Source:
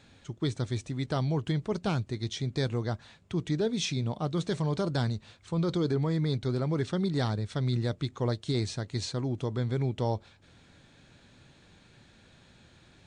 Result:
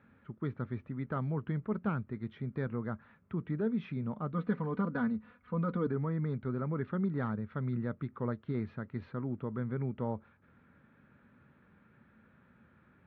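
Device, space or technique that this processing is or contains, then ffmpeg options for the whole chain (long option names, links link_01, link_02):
bass cabinet: -filter_complex "[0:a]lowpass=5800,highpass=71,equalizer=frequency=110:width_type=q:width=4:gain=-4,equalizer=frequency=220:width_type=q:width=4:gain=7,equalizer=frequency=330:width_type=q:width=4:gain=-4,equalizer=frequency=720:width_type=q:width=4:gain=-7,equalizer=frequency=1300:width_type=q:width=4:gain=7,lowpass=frequency=2000:width=0.5412,lowpass=frequency=2000:width=1.3066,asettb=1/sr,asplit=3[link_01][link_02][link_03];[link_01]atrim=end=4.334[link_04];[link_02]atrim=start=4.33:end=5.87,asetpts=PTS-STARTPTS,afade=type=in:duration=0.004:curve=qsin,afade=type=out:start_time=1.536:duration=0.004:curve=qsin,aecho=1:1:4.1:0.86,atrim=end_sample=67914[link_05];[link_03]atrim=start=5.866[link_06];[link_04][link_05]acrossfade=duration=0.004:curve1=hsin:curve2=qsin[link_07];[link_07][link_06]acrossfade=duration=0.004:curve1=qsin:curve2=hsin,volume=-5dB"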